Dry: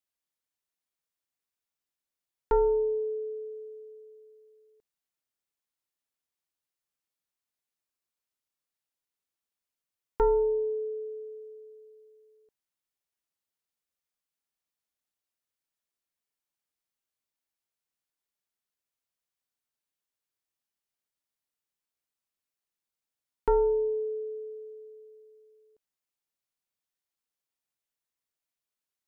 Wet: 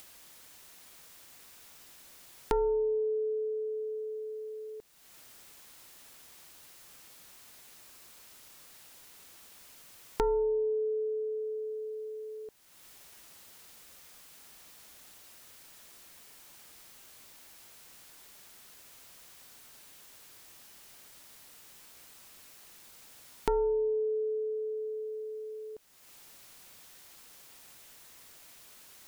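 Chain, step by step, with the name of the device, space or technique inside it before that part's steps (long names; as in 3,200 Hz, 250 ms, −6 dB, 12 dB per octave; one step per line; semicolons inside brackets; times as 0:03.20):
upward and downward compression (upward compression, threshold −36 dBFS; downward compressor 3 to 1, threshold −36 dBFS, peak gain reduction 11.5 dB)
level +6 dB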